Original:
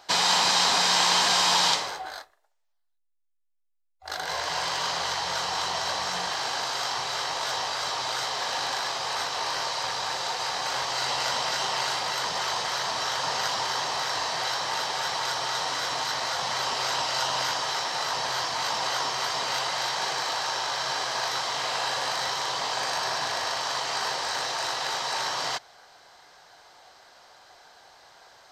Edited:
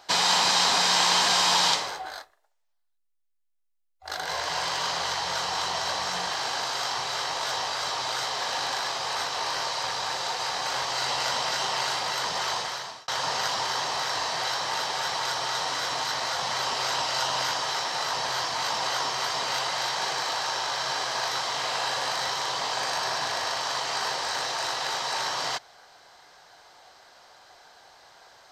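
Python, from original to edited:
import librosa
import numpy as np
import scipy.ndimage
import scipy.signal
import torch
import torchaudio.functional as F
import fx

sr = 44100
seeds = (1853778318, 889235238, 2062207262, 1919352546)

y = fx.edit(x, sr, fx.fade_out_span(start_s=12.53, length_s=0.55), tone=tone)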